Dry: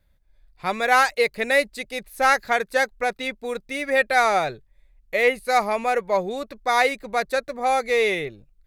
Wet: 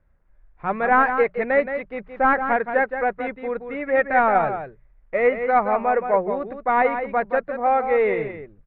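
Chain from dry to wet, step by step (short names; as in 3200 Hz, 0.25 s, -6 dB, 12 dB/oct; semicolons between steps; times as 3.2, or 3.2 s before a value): CVSD 64 kbps; LPF 1800 Hz 24 dB/oct; notches 60/120/180 Hz; echo 0.172 s -8.5 dB; gain +2 dB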